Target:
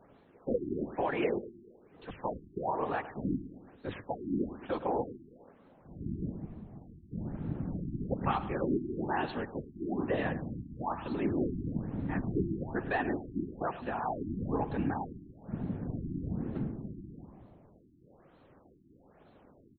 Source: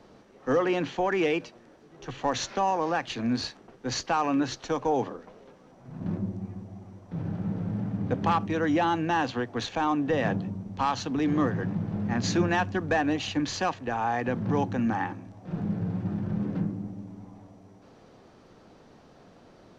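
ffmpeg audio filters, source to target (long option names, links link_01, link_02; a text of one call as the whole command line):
ffmpeg -i in.wav -af "afftfilt=real='hypot(re,im)*cos(2*PI*random(0))':imag='hypot(re,im)*sin(2*PI*random(1))':win_size=512:overlap=0.75,aecho=1:1:107|214|321|428|535:0.2|0.106|0.056|0.0297|0.0157,afftfilt=real='re*lt(b*sr/1024,370*pow(4400/370,0.5+0.5*sin(2*PI*1.1*pts/sr)))':imag='im*lt(b*sr/1024,370*pow(4400/370,0.5+0.5*sin(2*PI*1.1*pts/sr)))':win_size=1024:overlap=0.75" out.wav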